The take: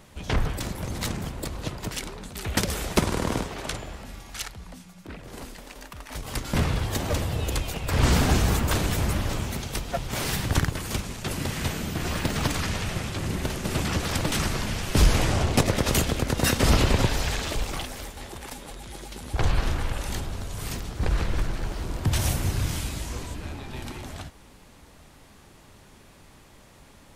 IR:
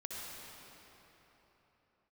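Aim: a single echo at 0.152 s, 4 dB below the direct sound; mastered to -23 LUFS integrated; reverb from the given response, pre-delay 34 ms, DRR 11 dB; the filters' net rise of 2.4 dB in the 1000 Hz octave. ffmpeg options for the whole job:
-filter_complex "[0:a]equalizer=f=1k:t=o:g=3,aecho=1:1:152:0.631,asplit=2[a][b];[1:a]atrim=start_sample=2205,adelay=34[c];[b][c]afir=irnorm=-1:irlink=0,volume=-11.5dB[d];[a][d]amix=inputs=2:normalize=0,volume=2.5dB"

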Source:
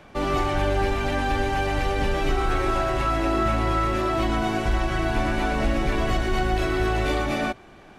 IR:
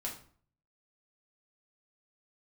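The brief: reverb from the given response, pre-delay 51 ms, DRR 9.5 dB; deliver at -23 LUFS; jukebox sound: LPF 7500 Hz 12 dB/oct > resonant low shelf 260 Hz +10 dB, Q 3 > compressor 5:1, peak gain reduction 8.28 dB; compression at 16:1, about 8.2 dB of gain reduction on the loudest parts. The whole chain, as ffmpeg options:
-filter_complex "[0:a]acompressor=threshold=-26dB:ratio=16,asplit=2[a][b];[1:a]atrim=start_sample=2205,adelay=51[c];[b][c]afir=irnorm=-1:irlink=0,volume=-10dB[d];[a][d]amix=inputs=2:normalize=0,lowpass=7.5k,lowshelf=f=260:t=q:w=3:g=10,acompressor=threshold=-23dB:ratio=5,volume=6.5dB"

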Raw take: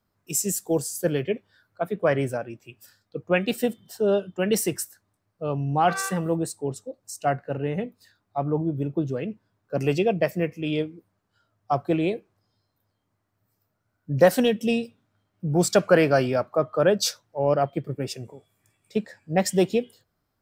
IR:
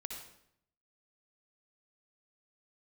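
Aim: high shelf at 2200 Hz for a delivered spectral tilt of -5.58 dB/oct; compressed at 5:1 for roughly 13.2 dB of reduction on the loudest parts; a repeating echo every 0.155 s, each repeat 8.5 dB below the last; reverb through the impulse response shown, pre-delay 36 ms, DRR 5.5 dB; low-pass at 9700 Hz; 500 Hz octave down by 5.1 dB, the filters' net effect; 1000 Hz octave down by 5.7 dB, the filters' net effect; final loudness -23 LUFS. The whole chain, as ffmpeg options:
-filter_complex "[0:a]lowpass=9.7k,equalizer=f=500:t=o:g=-4.5,equalizer=f=1k:t=o:g=-5.5,highshelf=f=2.2k:g=-5,acompressor=threshold=-32dB:ratio=5,aecho=1:1:155|310|465|620:0.376|0.143|0.0543|0.0206,asplit=2[a][b];[1:a]atrim=start_sample=2205,adelay=36[c];[b][c]afir=irnorm=-1:irlink=0,volume=-4dB[d];[a][d]amix=inputs=2:normalize=0,volume=13dB"

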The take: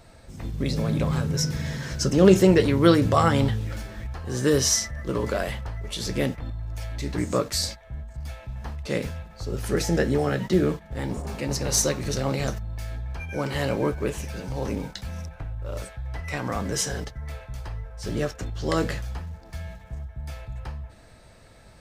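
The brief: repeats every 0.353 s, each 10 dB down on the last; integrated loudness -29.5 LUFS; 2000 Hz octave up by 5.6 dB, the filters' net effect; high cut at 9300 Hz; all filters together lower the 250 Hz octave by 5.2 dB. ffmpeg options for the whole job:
-af "lowpass=9.3k,equalizer=f=250:t=o:g=-8.5,equalizer=f=2k:t=o:g=7,aecho=1:1:353|706|1059|1412:0.316|0.101|0.0324|0.0104,volume=-2.5dB"

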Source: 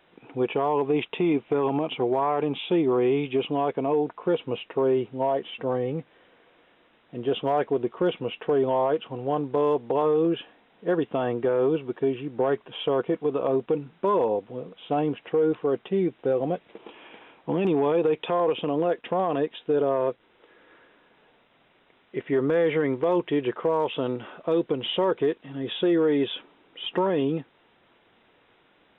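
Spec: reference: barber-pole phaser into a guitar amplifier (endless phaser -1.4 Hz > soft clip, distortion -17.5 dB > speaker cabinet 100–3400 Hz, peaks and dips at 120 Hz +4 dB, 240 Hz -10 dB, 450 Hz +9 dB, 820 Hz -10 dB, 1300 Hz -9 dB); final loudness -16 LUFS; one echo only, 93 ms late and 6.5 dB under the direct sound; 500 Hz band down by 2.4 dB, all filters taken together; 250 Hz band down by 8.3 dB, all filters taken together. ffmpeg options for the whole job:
-filter_complex "[0:a]equalizer=f=250:t=o:g=-8,equalizer=f=500:t=o:g=-6,aecho=1:1:93:0.473,asplit=2[a][b];[b]afreqshift=-1.4[c];[a][c]amix=inputs=2:normalize=1,asoftclip=threshold=-25.5dB,highpass=100,equalizer=f=120:t=q:w=4:g=4,equalizer=f=240:t=q:w=4:g=-10,equalizer=f=450:t=q:w=4:g=9,equalizer=f=820:t=q:w=4:g=-10,equalizer=f=1.3k:t=q:w=4:g=-9,lowpass=f=3.4k:w=0.5412,lowpass=f=3.4k:w=1.3066,volume=17dB"

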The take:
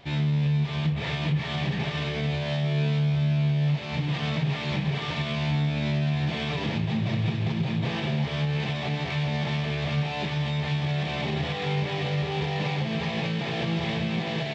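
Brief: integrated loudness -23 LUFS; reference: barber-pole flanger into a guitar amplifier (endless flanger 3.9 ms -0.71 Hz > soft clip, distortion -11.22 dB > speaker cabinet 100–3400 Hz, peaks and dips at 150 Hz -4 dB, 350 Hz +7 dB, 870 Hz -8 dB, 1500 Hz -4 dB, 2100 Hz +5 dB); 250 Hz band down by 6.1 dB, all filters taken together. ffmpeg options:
-filter_complex "[0:a]equalizer=f=250:t=o:g=-8,asplit=2[a][b];[b]adelay=3.9,afreqshift=-0.71[c];[a][c]amix=inputs=2:normalize=1,asoftclip=threshold=-31.5dB,highpass=100,equalizer=f=150:t=q:w=4:g=-4,equalizer=f=350:t=q:w=4:g=7,equalizer=f=870:t=q:w=4:g=-8,equalizer=f=1.5k:t=q:w=4:g=-4,equalizer=f=2.1k:t=q:w=4:g=5,lowpass=f=3.4k:w=0.5412,lowpass=f=3.4k:w=1.3066,volume=14.5dB"

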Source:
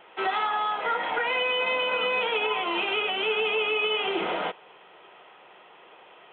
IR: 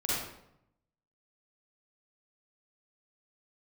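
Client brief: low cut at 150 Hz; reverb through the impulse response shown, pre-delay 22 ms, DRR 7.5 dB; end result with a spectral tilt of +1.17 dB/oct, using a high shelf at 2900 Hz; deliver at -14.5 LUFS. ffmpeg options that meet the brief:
-filter_complex "[0:a]highpass=150,highshelf=f=2.9k:g=-8,asplit=2[a][b];[1:a]atrim=start_sample=2205,adelay=22[c];[b][c]afir=irnorm=-1:irlink=0,volume=-15dB[d];[a][d]amix=inputs=2:normalize=0,volume=12.5dB"

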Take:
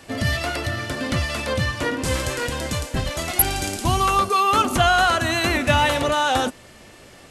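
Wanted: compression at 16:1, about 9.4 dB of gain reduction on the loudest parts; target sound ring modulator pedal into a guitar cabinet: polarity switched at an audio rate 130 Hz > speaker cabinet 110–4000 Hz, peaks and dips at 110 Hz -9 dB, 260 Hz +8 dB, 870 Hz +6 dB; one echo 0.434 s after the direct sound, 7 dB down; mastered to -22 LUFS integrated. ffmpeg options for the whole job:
-af "acompressor=threshold=-22dB:ratio=16,aecho=1:1:434:0.447,aeval=exprs='val(0)*sgn(sin(2*PI*130*n/s))':c=same,highpass=110,equalizer=f=110:t=q:w=4:g=-9,equalizer=f=260:t=q:w=4:g=8,equalizer=f=870:t=q:w=4:g=6,lowpass=f=4k:w=0.5412,lowpass=f=4k:w=1.3066,volume=3dB"

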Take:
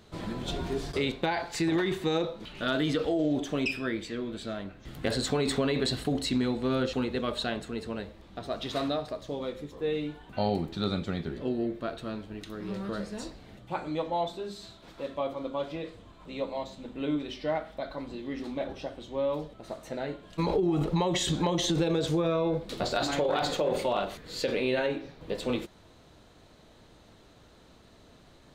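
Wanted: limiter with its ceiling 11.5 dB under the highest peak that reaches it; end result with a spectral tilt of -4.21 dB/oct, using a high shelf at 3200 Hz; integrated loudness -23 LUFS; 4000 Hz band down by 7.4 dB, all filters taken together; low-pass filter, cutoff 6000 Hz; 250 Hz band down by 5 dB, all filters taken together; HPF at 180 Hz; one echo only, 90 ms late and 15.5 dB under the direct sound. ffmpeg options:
-af "highpass=180,lowpass=6k,equalizer=f=250:t=o:g=-5.5,highshelf=f=3.2k:g=-4.5,equalizer=f=4k:t=o:g=-5,alimiter=level_in=3.5dB:limit=-24dB:level=0:latency=1,volume=-3.5dB,aecho=1:1:90:0.168,volume=15dB"

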